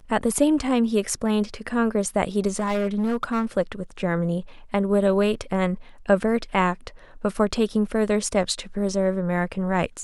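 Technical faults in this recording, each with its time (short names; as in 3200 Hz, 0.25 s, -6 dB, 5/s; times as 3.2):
2.56–3.45 clipped -19.5 dBFS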